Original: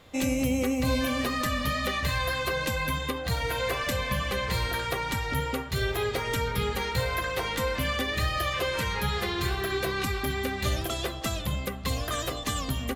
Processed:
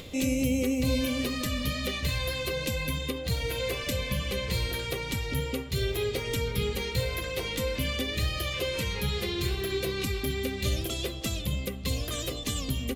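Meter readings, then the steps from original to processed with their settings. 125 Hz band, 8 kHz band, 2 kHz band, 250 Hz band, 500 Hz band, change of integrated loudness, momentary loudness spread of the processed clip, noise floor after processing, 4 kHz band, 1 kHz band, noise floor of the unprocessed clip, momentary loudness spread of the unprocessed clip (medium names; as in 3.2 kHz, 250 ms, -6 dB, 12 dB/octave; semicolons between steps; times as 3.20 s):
0.0 dB, 0.0 dB, -4.5 dB, 0.0 dB, -1.0 dB, -1.5 dB, 5 LU, -36 dBFS, 0.0 dB, -10.5 dB, -35 dBFS, 4 LU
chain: high-order bell 1.1 kHz -10.5 dB; upward compressor, threshold -34 dBFS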